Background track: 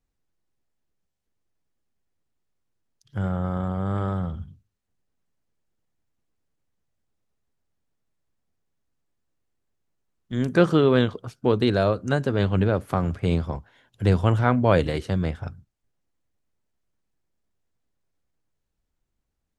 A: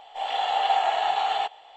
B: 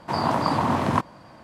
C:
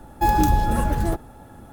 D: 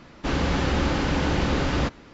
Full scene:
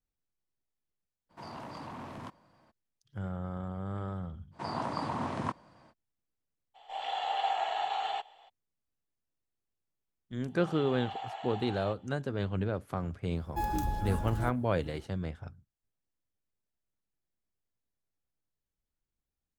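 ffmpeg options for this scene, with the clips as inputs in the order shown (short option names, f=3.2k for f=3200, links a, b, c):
-filter_complex "[2:a]asplit=2[a][b];[1:a]asplit=2[c][d];[0:a]volume=-11dB[e];[a]asoftclip=type=tanh:threshold=-21dB[f];[b]aresample=22050,aresample=44100[g];[f]atrim=end=1.43,asetpts=PTS-STARTPTS,volume=-17.5dB,afade=t=in:d=0.02,afade=t=out:st=1.41:d=0.02,adelay=1290[h];[g]atrim=end=1.43,asetpts=PTS-STARTPTS,volume=-12dB,afade=t=in:d=0.05,afade=t=out:st=1.38:d=0.05,adelay=4510[i];[c]atrim=end=1.76,asetpts=PTS-STARTPTS,volume=-8.5dB,afade=t=in:d=0.02,afade=t=out:st=1.74:d=0.02,adelay=297234S[j];[d]atrim=end=1.76,asetpts=PTS-STARTPTS,volume=-18dB,afade=t=in:d=0.004:c=hsin,afade=t=out:st=1.756:d=0.004:c=hsin,adelay=10460[k];[3:a]atrim=end=1.72,asetpts=PTS-STARTPTS,volume=-14dB,afade=t=in:d=0.004:c=hsin,afade=t=out:st=1.716:d=0.004:c=hsin,adelay=13350[l];[e][h][i][j][k][l]amix=inputs=6:normalize=0"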